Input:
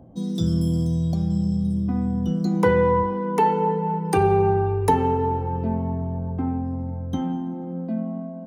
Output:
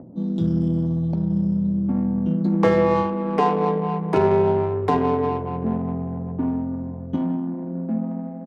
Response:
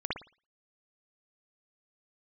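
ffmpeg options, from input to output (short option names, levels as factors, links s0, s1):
-filter_complex "[0:a]highpass=160,acrossover=split=610[s0][s1];[s0]acompressor=mode=upward:threshold=0.01:ratio=2.5[s2];[s1]aeval=exprs='val(0)*sin(2*PI*150*n/s)':c=same[s3];[s2][s3]amix=inputs=2:normalize=0,adynamicsmooth=sensitivity=2:basefreq=1100,aecho=1:1:70:0.0891,alimiter=level_in=3.16:limit=0.891:release=50:level=0:latency=1,volume=0.501"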